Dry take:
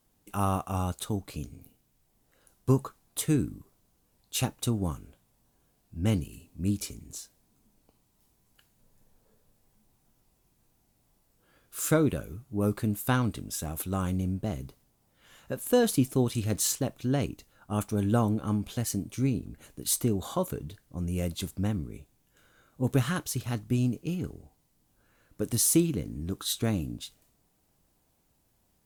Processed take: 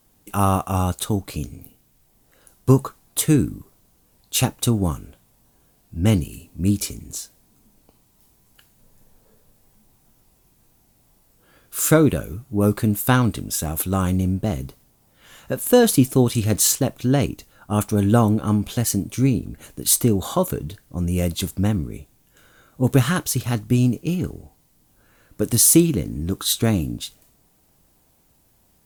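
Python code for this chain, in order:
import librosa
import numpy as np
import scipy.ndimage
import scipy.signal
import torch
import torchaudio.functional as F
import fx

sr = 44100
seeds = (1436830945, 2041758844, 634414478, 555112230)

y = fx.high_shelf(x, sr, hz=11000.0, db=4.0)
y = y * 10.0 ** (9.0 / 20.0)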